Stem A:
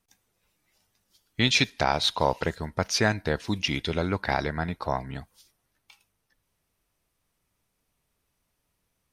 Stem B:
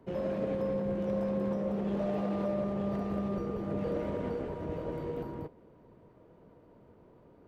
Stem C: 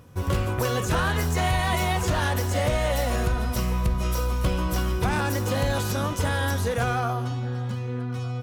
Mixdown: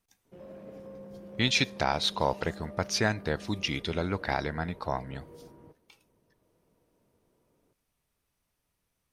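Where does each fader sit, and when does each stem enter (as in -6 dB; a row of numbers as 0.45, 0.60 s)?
-3.5 dB, -13.5 dB, off; 0.00 s, 0.25 s, off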